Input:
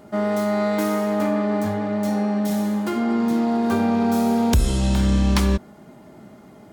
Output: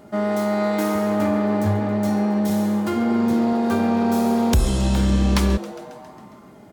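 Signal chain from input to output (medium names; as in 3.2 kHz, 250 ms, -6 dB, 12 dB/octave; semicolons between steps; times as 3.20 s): 0.95–3.53 s: peaking EQ 86 Hz +14.5 dB 0.84 oct; frequency-shifting echo 136 ms, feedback 65%, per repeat +140 Hz, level -17 dB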